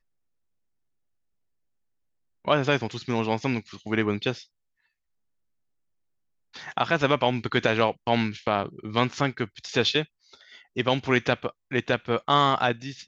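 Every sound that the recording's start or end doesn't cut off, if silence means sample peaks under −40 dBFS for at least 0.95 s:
0:02.45–0:04.43

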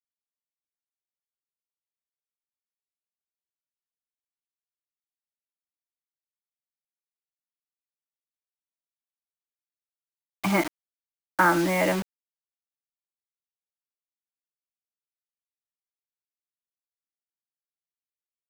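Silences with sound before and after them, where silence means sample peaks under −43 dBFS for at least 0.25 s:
0:10.68–0:11.39

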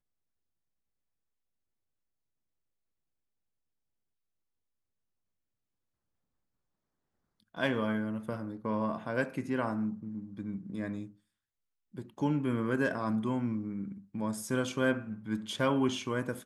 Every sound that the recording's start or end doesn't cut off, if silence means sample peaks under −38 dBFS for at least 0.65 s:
0:07.55–0:11.05

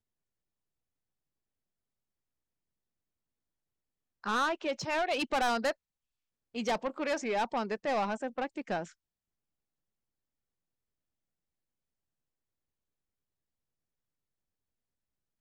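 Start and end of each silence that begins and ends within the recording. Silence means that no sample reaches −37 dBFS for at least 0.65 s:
0:05.72–0:06.55

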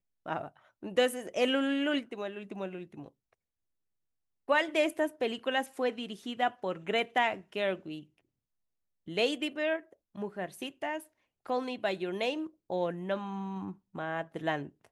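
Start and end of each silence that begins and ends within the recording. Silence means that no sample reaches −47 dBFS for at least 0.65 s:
0:03.08–0:04.48
0:08.03–0:09.08

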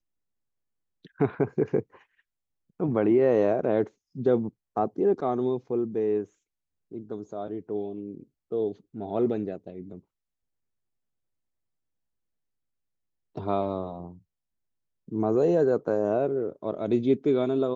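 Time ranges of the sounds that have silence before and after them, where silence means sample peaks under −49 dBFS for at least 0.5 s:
0:01.05–0:02.02
0:02.80–0:06.26
0:06.91–0:10.00
0:13.36–0:14.19

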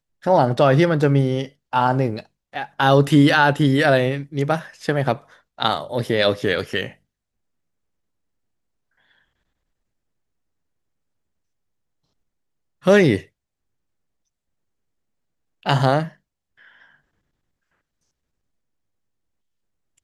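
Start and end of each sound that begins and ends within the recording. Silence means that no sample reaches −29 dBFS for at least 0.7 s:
0:12.86–0:13.20
0:15.66–0:16.08

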